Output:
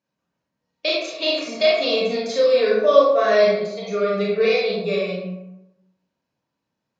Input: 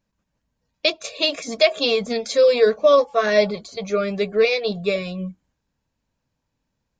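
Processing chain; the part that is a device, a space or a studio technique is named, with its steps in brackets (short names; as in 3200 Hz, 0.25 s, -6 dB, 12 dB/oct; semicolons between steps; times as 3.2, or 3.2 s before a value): supermarket ceiling speaker (BPF 200–6200 Hz; reverb RT60 0.85 s, pre-delay 27 ms, DRR -4.5 dB); gain -5.5 dB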